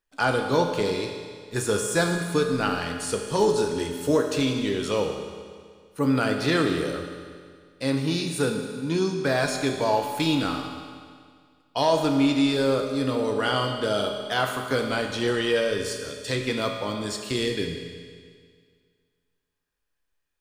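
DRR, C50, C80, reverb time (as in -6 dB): 2.5 dB, 5.0 dB, 6.0 dB, 2.0 s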